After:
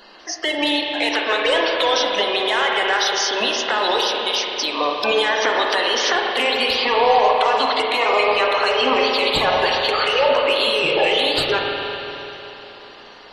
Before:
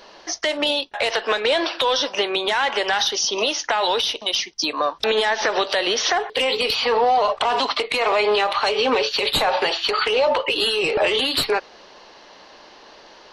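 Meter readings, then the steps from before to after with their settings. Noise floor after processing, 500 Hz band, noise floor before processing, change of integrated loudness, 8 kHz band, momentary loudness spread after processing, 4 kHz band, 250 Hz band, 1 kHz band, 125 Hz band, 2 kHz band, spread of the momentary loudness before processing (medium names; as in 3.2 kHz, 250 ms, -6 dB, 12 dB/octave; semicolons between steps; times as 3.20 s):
-41 dBFS, +2.0 dB, -47 dBFS, +2.0 dB, -1.0 dB, 6 LU, +2.0 dB, +3.0 dB, +3.0 dB, +3.5 dB, +3.5 dB, 4 LU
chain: coarse spectral quantiser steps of 30 dB; spring tank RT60 3.6 s, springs 34/48 ms, chirp 35 ms, DRR -0.5 dB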